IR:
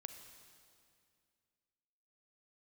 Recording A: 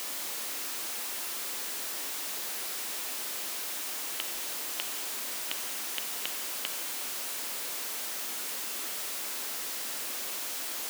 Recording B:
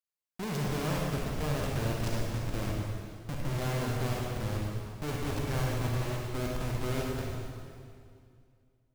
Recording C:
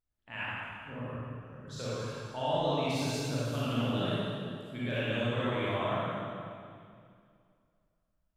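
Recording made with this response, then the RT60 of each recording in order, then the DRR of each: A; 2.3, 2.3, 2.3 s; 7.0, -2.5, -10.0 dB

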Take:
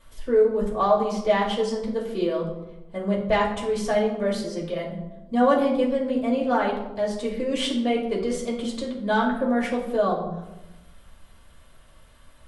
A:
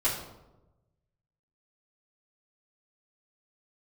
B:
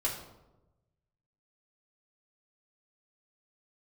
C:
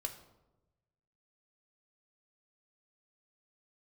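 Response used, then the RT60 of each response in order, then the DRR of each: B; 1.0, 1.0, 1.0 s; -9.5, -4.5, 3.5 dB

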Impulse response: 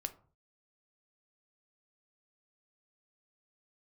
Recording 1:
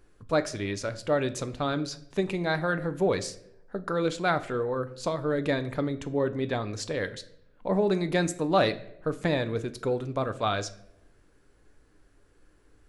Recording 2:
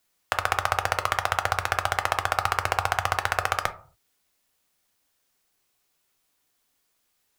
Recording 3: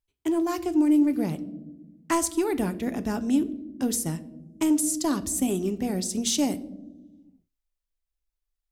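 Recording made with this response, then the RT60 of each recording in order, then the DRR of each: 2; not exponential, 0.45 s, 1.1 s; 9.5, 8.5, 11.0 dB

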